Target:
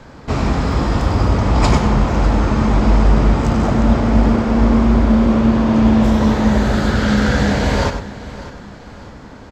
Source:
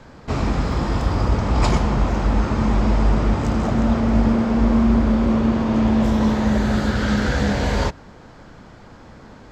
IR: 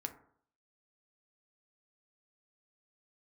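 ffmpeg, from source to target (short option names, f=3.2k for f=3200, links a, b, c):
-filter_complex "[0:a]aecho=1:1:600|1200|1800|2400:0.15|0.0643|0.0277|0.0119,asplit=2[a][b];[1:a]atrim=start_sample=2205,adelay=95[c];[b][c]afir=irnorm=-1:irlink=0,volume=-7dB[d];[a][d]amix=inputs=2:normalize=0,volume=4dB"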